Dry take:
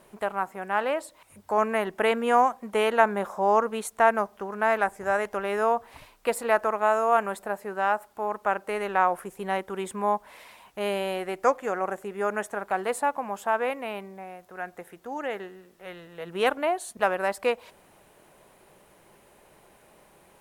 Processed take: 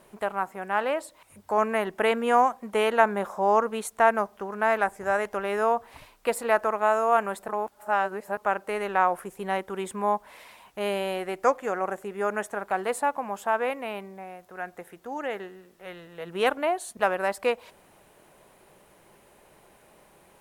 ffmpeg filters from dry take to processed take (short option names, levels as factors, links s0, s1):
-filter_complex "[0:a]asplit=3[s0][s1][s2];[s0]atrim=end=7.482[s3];[s1]atrim=start=7.478:end=8.372,asetpts=PTS-STARTPTS,areverse[s4];[s2]atrim=start=8.368[s5];[s3][s4]acrossfade=d=0.004:c1=hsin:c2=hsin[s6];[s6][s5]acrossfade=d=0.004:c1=hsin:c2=hsin"